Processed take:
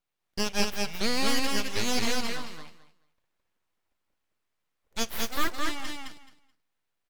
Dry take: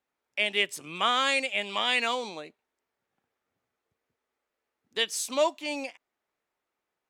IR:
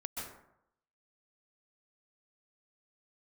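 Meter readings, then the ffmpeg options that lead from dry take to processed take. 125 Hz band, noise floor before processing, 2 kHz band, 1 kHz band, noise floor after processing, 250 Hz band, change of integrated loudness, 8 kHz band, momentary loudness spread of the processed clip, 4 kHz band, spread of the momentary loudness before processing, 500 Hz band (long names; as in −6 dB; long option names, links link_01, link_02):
+11.5 dB, below −85 dBFS, −4.0 dB, −4.0 dB, −80 dBFS, +7.0 dB, −2.5 dB, +2.5 dB, 14 LU, −2.5 dB, 12 LU, −4.0 dB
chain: -filter_complex "[0:a]aeval=exprs='abs(val(0))':channel_layout=same,aecho=1:1:215|430|645:0.708|0.127|0.0229,asplit=2[link_01][link_02];[1:a]atrim=start_sample=2205,asetrate=57330,aresample=44100,adelay=50[link_03];[link_02][link_03]afir=irnorm=-1:irlink=0,volume=-19dB[link_04];[link_01][link_04]amix=inputs=2:normalize=0"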